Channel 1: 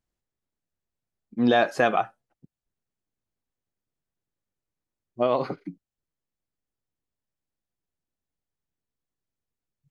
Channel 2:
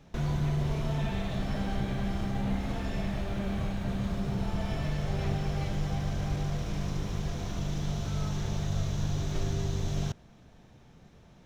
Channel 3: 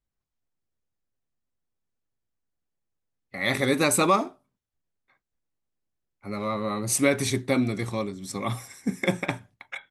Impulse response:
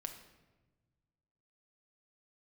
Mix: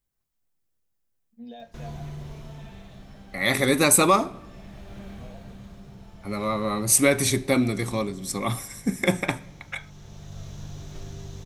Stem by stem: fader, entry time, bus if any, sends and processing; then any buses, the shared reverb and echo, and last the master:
-12.5 dB, 0.00 s, no send, static phaser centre 330 Hz, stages 6; feedback comb 230 Hz, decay 0.16 s, harmonics all, mix 90%
-8.0 dB, 1.60 s, no send, treble shelf 5.9 kHz +6.5 dB; upward compressor, threshold -47 dBFS; auto duck -8 dB, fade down 1.20 s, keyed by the third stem
0.0 dB, 0.00 s, send -7.5 dB, treble shelf 8.8 kHz +10.5 dB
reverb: on, RT60 1.2 s, pre-delay 6 ms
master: none

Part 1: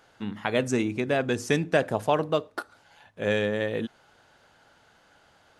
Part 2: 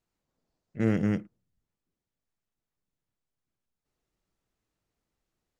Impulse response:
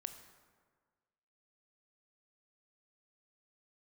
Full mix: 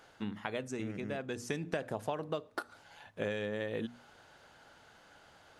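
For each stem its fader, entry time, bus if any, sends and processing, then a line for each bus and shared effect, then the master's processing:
0.0 dB, 0.00 s, no send, hum notches 60/120/180/240 Hz; auto duck -13 dB, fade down 0.70 s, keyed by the second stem
-16.5 dB, 0.00 s, no send, none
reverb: none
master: compression 10:1, threshold -32 dBFS, peak gain reduction 15 dB

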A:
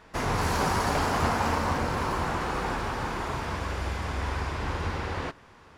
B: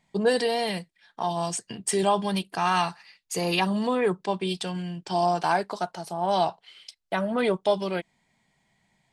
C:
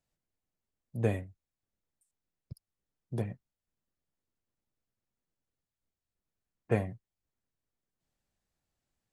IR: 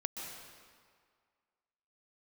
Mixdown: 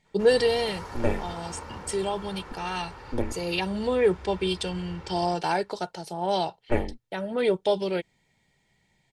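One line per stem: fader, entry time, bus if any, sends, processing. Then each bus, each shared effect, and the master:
-14.0 dB, 0.05 s, no send, none
+2.0 dB, 0.00 s, no send, peaking EQ 1.1 kHz -9 dB 0.91 oct; auto duck -6 dB, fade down 0.35 s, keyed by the third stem
-3.5 dB, 0.00 s, no send, level rider gain up to 12.5 dB; ring modulator 120 Hz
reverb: none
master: treble shelf 8.9 kHz -8 dB; comb 2.2 ms, depth 38%

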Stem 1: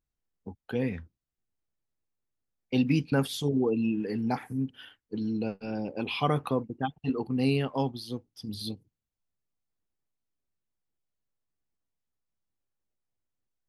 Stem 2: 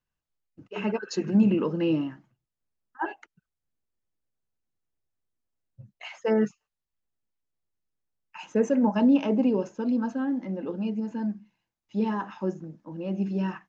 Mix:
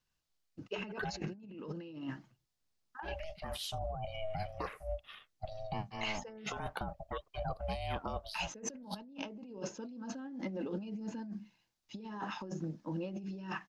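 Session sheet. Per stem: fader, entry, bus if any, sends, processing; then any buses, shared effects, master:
-7.5 dB, 0.30 s, no send, steep high-pass 270 Hz 72 dB/octave; treble shelf 7 kHz -4.5 dB; ring modulator 320 Hz
-6.0 dB, 0.00 s, no send, peaking EQ 4.7 kHz +8.5 dB 1.4 oct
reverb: none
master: compressor with a negative ratio -42 dBFS, ratio -1

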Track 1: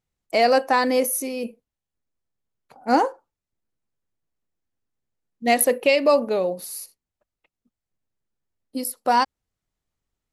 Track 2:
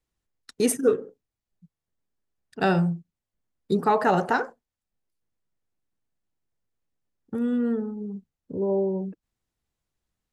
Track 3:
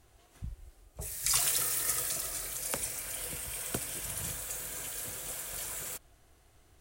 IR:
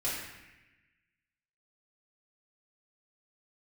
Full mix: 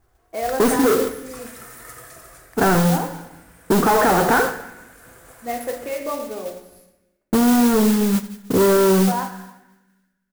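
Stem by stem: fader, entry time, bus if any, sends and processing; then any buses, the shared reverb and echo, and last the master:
-12.5 dB, 0.00 s, send -5.5 dB, no echo send, none
-2.5 dB, 0.00 s, send -15.5 dB, echo send -17 dB, gate with hold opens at -43 dBFS; waveshaping leveller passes 5
-2.5 dB, 0.00 s, send -10 dB, no echo send, auto duck -12 dB, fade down 0.20 s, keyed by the second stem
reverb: on, RT60 1.0 s, pre-delay 3 ms
echo: delay 75 ms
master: resonant high shelf 2.2 kHz -11 dB, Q 1.5; modulation noise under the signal 13 dB; peak limiter -8.5 dBFS, peak gain reduction 5 dB

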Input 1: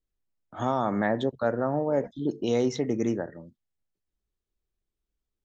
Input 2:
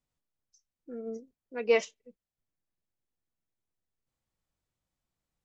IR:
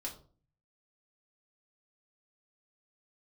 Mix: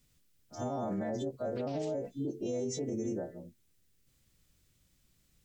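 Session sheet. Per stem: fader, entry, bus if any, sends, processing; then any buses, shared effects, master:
-1.5 dB, 0.00 s, no send, partials quantised in pitch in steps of 2 st; high-order bell 2.2 kHz -14 dB 2.8 oct
-6.0 dB, 0.00 s, no send, peaking EQ 830 Hz -14 dB 1.6 oct; compression, threshold -38 dBFS, peak gain reduction 12.5 dB; spectrum-flattening compressor 10:1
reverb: none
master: peak limiter -27.5 dBFS, peak gain reduction 10.5 dB

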